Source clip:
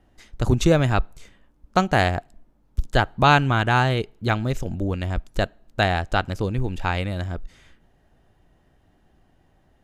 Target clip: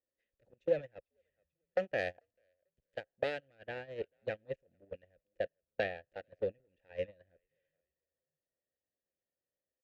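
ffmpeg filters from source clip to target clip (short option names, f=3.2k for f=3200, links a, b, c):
-filter_complex "[0:a]aeval=exprs='clip(val(0),-1,0.0708)':c=same,lowshelf=f=170:g=11.5,asplit=3[a][b][c];[b]adelay=443,afreqshift=-85,volume=-21.5dB[d];[c]adelay=886,afreqshift=-170,volume=-31.7dB[e];[a][d][e]amix=inputs=3:normalize=0,acompressor=threshold=-19dB:ratio=16,asplit=3[f][g][h];[f]bandpass=f=530:t=q:w=8,volume=0dB[i];[g]bandpass=f=1.84k:t=q:w=8,volume=-6dB[j];[h]bandpass=f=2.48k:t=q:w=8,volume=-9dB[k];[i][j][k]amix=inputs=3:normalize=0,agate=range=-29dB:threshold=-39dB:ratio=16:detection=peak,asetnsamples=n=441:p=0,asendcmd='1.98 highshelf g 8.5;3.55 highshelf g -5.5',highshelf=f=5.9k:g=-3,volume=6.5dB"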